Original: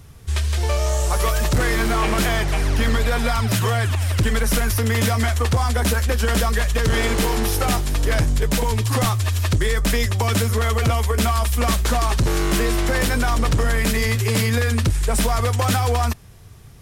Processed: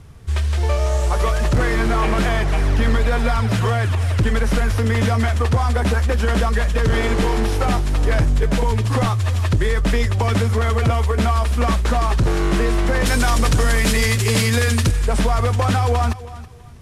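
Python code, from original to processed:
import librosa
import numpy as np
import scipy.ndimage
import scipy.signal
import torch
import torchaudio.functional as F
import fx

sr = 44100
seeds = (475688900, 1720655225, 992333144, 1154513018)

y = fx.cvsd(x, sr, bps=64000)
y = fx.high_shelf(y, sr, hz=3200.0, db=fx.steps((0.0, -9.0), (13.05, 5.0), (14.9, -7.5)))
y = fx.echo_feedback(y, sr, ms=325, feedback_pct=24, wet_db=-16.5)
y = y * librosa.db_to_amplitude(2.0)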